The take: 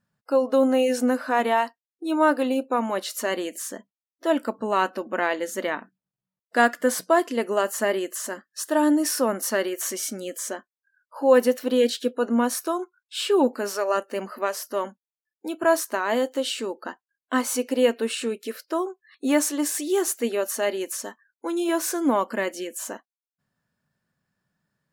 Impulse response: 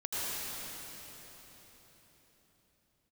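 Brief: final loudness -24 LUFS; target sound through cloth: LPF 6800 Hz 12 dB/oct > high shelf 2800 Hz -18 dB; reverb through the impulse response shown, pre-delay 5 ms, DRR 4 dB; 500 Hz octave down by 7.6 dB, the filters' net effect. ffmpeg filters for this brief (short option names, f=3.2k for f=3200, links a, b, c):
-filter_complex "[0:a]equalizer=f=500:t=o:g=-8.5,asplit=2[a][b];[1:a]atrim=start_sample=2205,adelay=5[c];[b][c]afir=irnorm=-1:irlink=0,volume=-11dB[d];[a][d]amix=inputs=2:normalize=0,lowpass=6.8k,highshelf=f=2.8k:g=-18,volume=5dB"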